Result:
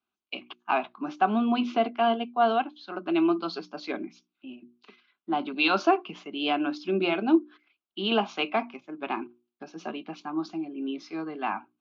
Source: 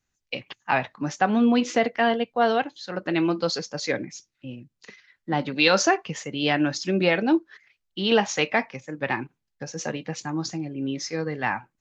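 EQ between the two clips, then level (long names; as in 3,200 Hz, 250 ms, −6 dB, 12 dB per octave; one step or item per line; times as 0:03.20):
loudspeaker in its box 270–3,000 Hz, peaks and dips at 280 Hz −6 dB, 550 Hz −5 dB, 870 Hz −10 dB
mains-hum notches 60/120/180/240/300/360 Hz
phaser with its sweep stopped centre 500 Hz, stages 6
+5.5 dB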